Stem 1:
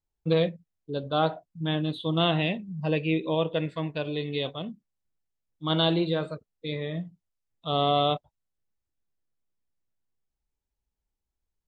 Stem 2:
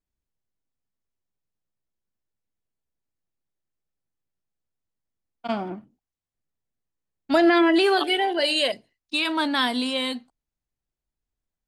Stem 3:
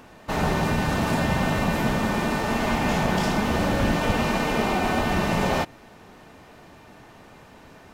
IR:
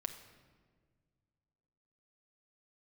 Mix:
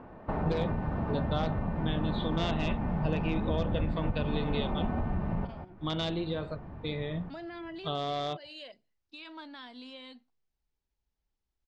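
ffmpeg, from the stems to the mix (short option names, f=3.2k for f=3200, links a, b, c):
-filter_complex "[0:a]adelay=200,volume=0.5dB[a];[1:a]alimiter=limit=-16dB:level=0:latency=1:release=270,volume=-19.5dB,asplit=2[b][c];[2:a]lowpass=1.1k,asubboost=boost=3.5:cutoff=190,acompressor=threshold=-30dB:ratio=5,volume=0.5dB[d];[c]apad=whole_len=349748[e];[d][e]sidechaincompress=threshold=-55dB:ratio=8:attack=6.7:release=197[f];[a][b]amix=inputs=2:normalize=0,aeval=exprs='0.188*(abs(mod(val(0)/0.188+3,4)-2)-1)':c=same,acompressor=threshold=-31dB:ratio=4,volume=0dB[g];[f][g]amix=inputs=2:normalize=0,lowpass=f=6k:w=0.5412,lowpass=f=6k:w=1.3066"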